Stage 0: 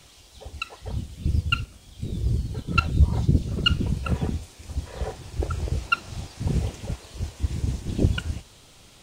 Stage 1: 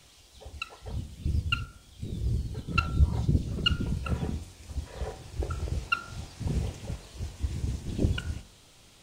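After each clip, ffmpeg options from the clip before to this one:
-af "bandreject=f=45.13:t=h:w=4,bandreject=f=90.26:t=h:w=4,bandreject=f=135.39:t=h:w=4,bandreject=f=180.52:t=h:w=4,bandreject=f=225.65:t=h:w=4,bandreject=f=270.78:t=h:w=4,bandreject=f=315.91:t=h:w=4,bandreject=f=361.04:t=h:w=4,bandreject=f=406.17:t=h:w=4,bandreject=f=451.3:t=h:w=4,bandreject=f=496.43:t=h:w=4,bandreject=f=541.56:t=h:w=4,bandreject=f=586.69:t=h:w=4,bandreject=f=631.82:t=h:w=4,bandreject=f=676.95:t=h:w=4,bandreject=f=722.08:t=h:w=4,bandreject=f=767.21:t=h:w=4,bandreject=f=812.34:t=h:w=4,bandreject=f=857.47:t=h:w=4,bandreject=f=902.6:t=h:w=4,bandreject=f=947.73:t=h:w=4,bandreject=f=992.86:t=h:w=4,bandreject=f=1.03799k:t=h:w=4,bandreject=f=1.08312k:t=h:w=4,bandreject=f=1.12825k:t=h:w=4,bandreject=f=1.17338k:t=h:w=4,bandreject=f=1.21851k:t=h:w=4,bandreject=f=1.26364k:t=h:w=4,bandreject=f=1.30877k:t=h:w=4,bandreject=f=1.3539k:t=h:w=4,bandreject=f=1.39903k:t=h:w=4,bandreject=f=1.44416k:t=h:w=4,bandreject=f=1.48929k:t=h:w=4,volume=-4.5dB"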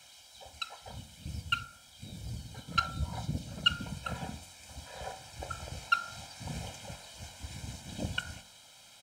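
-af "highpass=f=600:p=1,aecho=1:1:1.3:0.84"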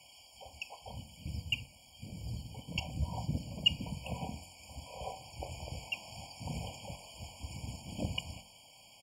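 -af "afftfilt=real='re*eq(mod(floor(b*sr/1024/1100),2),0)':imag='im*eq(mod(floor(b*sr/1024/1100),2),0)':win_size=1024:overlap=0.75"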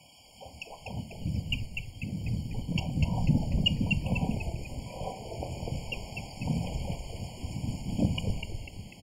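-filter_complex "[0:a]equalizer=f=200:t=o:w=2.6:g=12.5,asplit=2[a][b];[b]asplit=6[c][d][e][f][g][h];[c]adelay=247,afreqshift=-96,volume=-4.5dB[i];[d]adelay=494,afreqshift=-192,volume=-11.1dB[j];[e]adelay=741,afreqshift=-288,volume=-17.6dB[k];[f]adelay=988,afreqshift=-384,volume=-24.2dB[l];[g]adelay=1235,afreqshift=-480,volume=-30.7dB[m];[h]adelay=1482,afreqshift=-576,volume=-37.3dB[n];[i][j][k][l][m][n]amix=inputs=6:normalize=0[o];[a][o]amix=inputs=2:normalize=0"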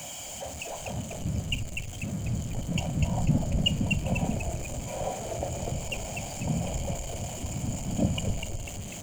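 -af "aeval=exprs='val(0)+0.5*0.0126*sgn(val(0))':c=same,superequalizer=8b=1.78:14b=0.631:15b=3.16"

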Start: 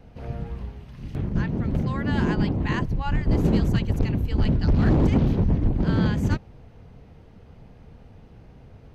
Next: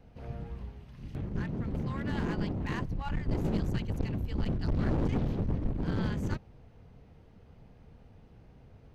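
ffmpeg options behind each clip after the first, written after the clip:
-af "aeval=exprs='clip(val(0),-1,0.0562)':c=same,volume=-7.5dB"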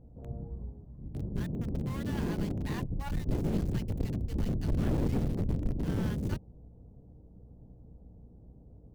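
-filter_complex "[0:a]acrossover=split=120|740[a][b][c];[c]acrusher=bits=5:dc=4:mix=0:aa=0.000001[d];[a][b][d]amix=inputs=3:normalize=0,aeval=exprs='val(0)+0.002*(sin(2*PI*60*n/s)+sin(2*PI*2*60*n/s)/2+sin(2*PI*3*60*n/s)/3+sin(2*PI*4*60*n/s)/4+sin(2*PI*5*60*n/s)/5)':c=same"

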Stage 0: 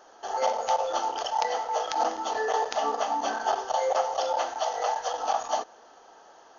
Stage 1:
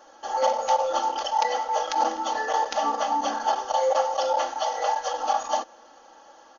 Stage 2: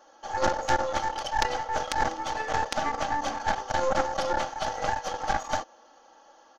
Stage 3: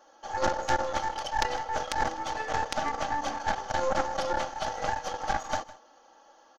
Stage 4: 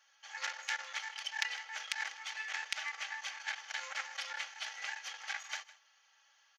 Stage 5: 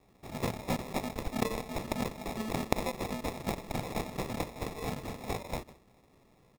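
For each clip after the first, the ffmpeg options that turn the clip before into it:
-af "aecho=1:1:3.6:0.8"
-af "aeval=exprs='0.562*(cos(1*acos(clip(val(0)/0.562,-1,1)))-cos(1*PI/2))+0.251*(cos(2*acos(clip(val(0)/0.562,-1,1)))-cos(2*PI/2))+0.0501*(cos(3*acos(clip(val(0)/0.562,-1,1)))-cos(3*PI/2))+0.0501*(cos(6*acos(clip(val(0)/0.562,-1,1)))-cos(6*PI/2))':c=same,volume=-2dB"
-af "aecho=1:1:157:0.119,volume=-2dB"
-af "highpass=f=2.2k:t=q:w=2.8,volume=-5.5dB"
-af "acrusher=samples=29:mix=1:aa=0.000001,volume=6dB"

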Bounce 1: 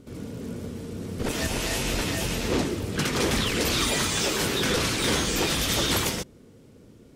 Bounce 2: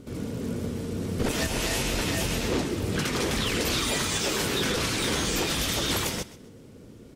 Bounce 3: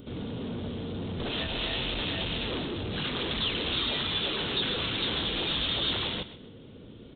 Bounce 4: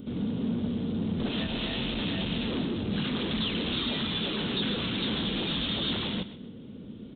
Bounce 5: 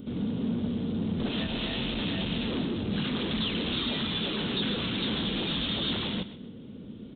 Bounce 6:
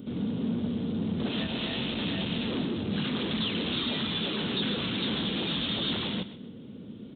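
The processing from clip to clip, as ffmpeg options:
-af "alimiter=limit=-20dB:level=0:latency=1:release=379,aecho=1:1:129|258|387:0.133|0.0413|0.0128,volume=3.5dB"
-af "aresample=8000,asoftclip=type=tanh:threshold=-30.5dB,aresample=44100,aexciter=amount=5.5:drive=1.4:freq=3.1k"
-af "equalizer=f=210:t=o:w=0.95:g=12,volume=-2.5dB"
-af anull
-af "highpass=84"

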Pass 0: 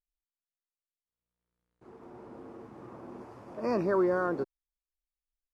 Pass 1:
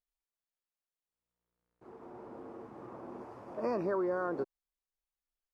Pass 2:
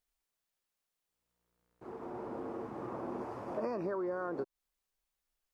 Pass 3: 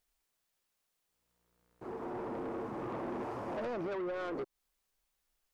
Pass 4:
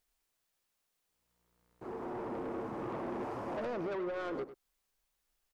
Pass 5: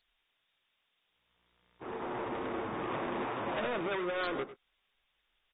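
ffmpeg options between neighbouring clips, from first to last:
-af "acompressor=threshold=-29dB:ratio=6,equalizer=f=710:t=o:w=2.7:g=6,volume=-4.5dB"
-af "acompressor=threshold=-40dB:ratio=6,volume=6.5dB"
-af "asoftclip=type=tanh:threshold=-39dB,volume=5dB"
-filter_complex "[0:a]asplit=2[a][b];[b]adelay=99.13,volume=-13dB,highshelf=f=4k:g=-2.23[c];[a][c]amix=inputs=2:normalize=0"
-filter_complex "[0:a]acrossover=split=140[a][b];[b]crystalizer=i=9:c=0[c];[a][c]amix=inputs=2:normalize=0" -ar 32000 -c:a aac -b:a 16k

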